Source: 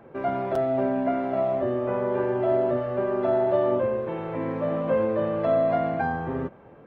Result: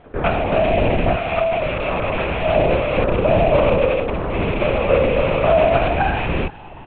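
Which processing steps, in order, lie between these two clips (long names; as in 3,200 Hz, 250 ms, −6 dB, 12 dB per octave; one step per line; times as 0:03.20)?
loose part that buzzes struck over −34 dBFS, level −23 dBFS
0:01.16–0:02.56: high-pass filter 600 Hz 12 dB per octave
in parallel at −3 dB: downward compressor, threshold −30 dBFS, peak gain reduction 11.5 dB
on the sum: dead-zone distortion −47 dBFS
echo with shifted repeats 374 ms, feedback 64%, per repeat +77 Hz, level −21.5 dB
linear-prediction vocoder at 8 kHz whisper
level +6 dB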